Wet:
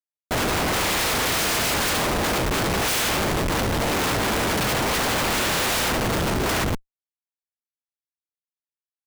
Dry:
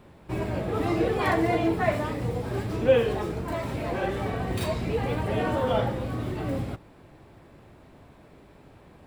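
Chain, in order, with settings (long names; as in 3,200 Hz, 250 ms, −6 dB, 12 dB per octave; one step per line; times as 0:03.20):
compressing power law on the bin magnitudes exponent 0.11
single-tap delay 71 ms −6 dB
comparator with hysteresis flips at −24.5 dBFS
level +5 dB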